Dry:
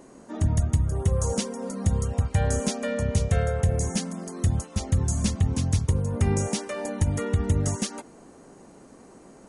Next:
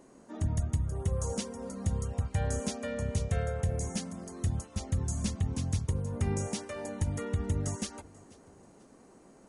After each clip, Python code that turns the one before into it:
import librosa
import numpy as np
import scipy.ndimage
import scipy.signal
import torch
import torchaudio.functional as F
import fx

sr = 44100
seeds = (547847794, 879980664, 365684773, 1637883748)

y = fx.echo_feedback(x, sr, ms=487, feedback_pct=34, wet_db=-23)
y = y * librosa.db_to_amplitude(-7.5)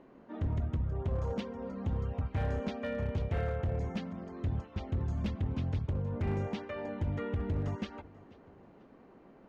y = scipy.signal.sosfilt(scipy.signal.butter(4, 3300.0, 'lowpass', fs=sr, output='sos'), x)
y = np.clip(y, -10.0 ** (-27.5 / 20.0), 10.0 ** (-27.5 / 20.0))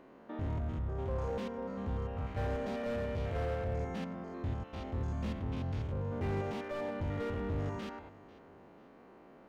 y = fx.spec_steps(x, sr, hold_ms=100)
y = fx.low_shelf(y, sr, hz=330.0, db=-7.5)
y = fx.slew_limit(y, sr, full_power_hz=7.2)
y = y * librosa.db_to_amplitude(5.0)